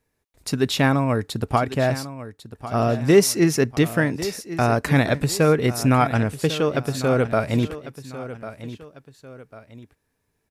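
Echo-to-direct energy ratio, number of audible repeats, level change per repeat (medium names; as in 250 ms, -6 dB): -13.5 dB, 2, -8.0 dB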